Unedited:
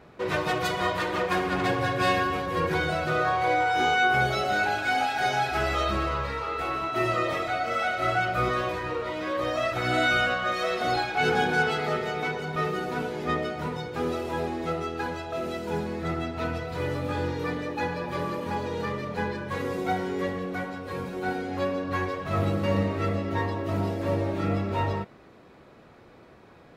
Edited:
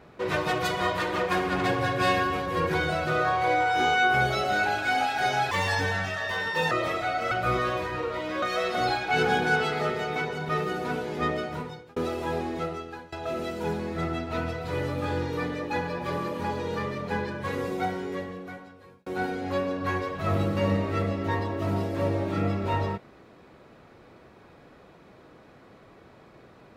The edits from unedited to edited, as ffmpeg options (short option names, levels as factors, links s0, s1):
-filter_complex "[0:a]asplit=8[s0][s1][s2][s3][s4][s5][s6][s7];[s0]atrim=end=5.514[s8];[s1]atrim=start=5.51:end=7.17,asetpts=PTS-STARTPTS,asetrate=60858,aresample=44100[s9];[s2]atrim=start=7.166:end=7.772[s10];[s3]atrim=start=8.228:end=9.342[s11];[s4]atrim=start=10.488:end=14.03,asetpts=PTS-STARTPTS,afade=t=out:st=3.032:d=0.51[s12];[s5]atrim=start=14.03:end=15.19,asetpts=PTS-STARTPTS,afade=t=in:d=0.004:c=hsin,afade=t=out:st=0.55:d=0.61:silence=0.0891251[s13];[s6]atrim=start=15.19:end=21.13,asetpts=PTS-STARTPTS,afade=t=in:d=0.004:c=hsin:silence=0.0891251,afade=t=out:st=4.49:d=1.45[s14];[s7]atrim=start=21.13,asetpts=PTS-STARTPTS,afade=t=in:d=0.004:c=hsin[s15];[s8][s9]acrossfade=d=0.004:c1=hsin:c2=hsin[s16];[s16][s10]acrossfade=d=0.004:c1=hsin:c2=hsin[s17];[s17][s11]acrossfade=d=0.004:c1=hsin:c2=hsin[s18];[s12][s13][s14][s15]concat=n=4:v=0:a=1[s19];[s18][s19]acrossfade=d=0.004:c1=hsin:c2=hsin"